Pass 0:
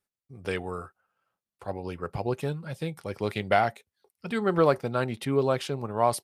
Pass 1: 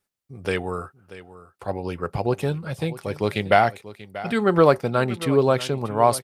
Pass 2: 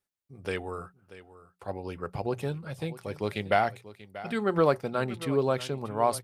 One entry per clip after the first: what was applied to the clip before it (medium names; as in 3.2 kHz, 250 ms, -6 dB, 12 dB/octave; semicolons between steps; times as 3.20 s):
delay 636 ms -16.5 dB; trim +6 dB
hum notches 60/120/180 Hz; trim -7.5 dB